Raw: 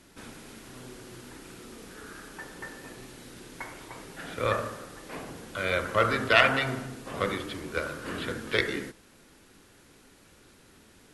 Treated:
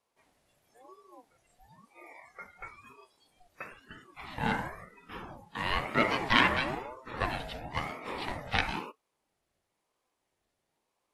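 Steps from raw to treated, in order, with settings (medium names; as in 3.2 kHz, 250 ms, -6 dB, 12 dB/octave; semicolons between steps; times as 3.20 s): spectral noise reduction 22 dB; ring modulator with a swept carrier 560 Hz, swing 40%, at 1 Hz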